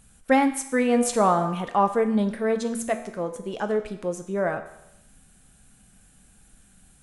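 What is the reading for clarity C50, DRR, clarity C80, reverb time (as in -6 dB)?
11.0 dB, 7.0 dB, 13.0 dB, 0.85 s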